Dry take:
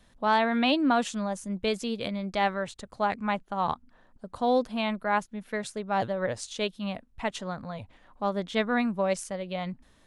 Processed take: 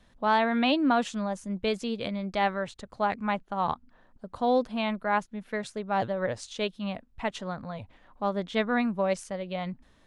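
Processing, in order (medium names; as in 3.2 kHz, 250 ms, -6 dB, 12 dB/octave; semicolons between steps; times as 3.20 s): treble shelf 8.4 kHz -11.5 dB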